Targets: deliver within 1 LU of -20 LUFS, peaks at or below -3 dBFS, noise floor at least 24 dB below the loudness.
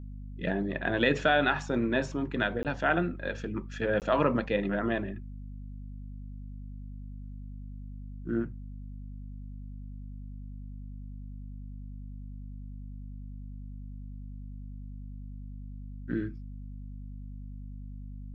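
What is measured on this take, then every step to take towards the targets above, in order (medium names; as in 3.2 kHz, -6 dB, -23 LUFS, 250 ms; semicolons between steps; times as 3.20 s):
dropouts 2; longest dropout 18 ms; hum 50 Hz; highest harmonic 250 Hz; hum level -39 dBFS; loudness -30.0 LUFS; peak level -11.0 dBFS; loudness target -20.0 LUFS
-> interpolate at 2.63/4.00 s, 18 ms; hum notches 50/100/150/200/250 Hz; trim +10 dB; peak limiter -3 dBFS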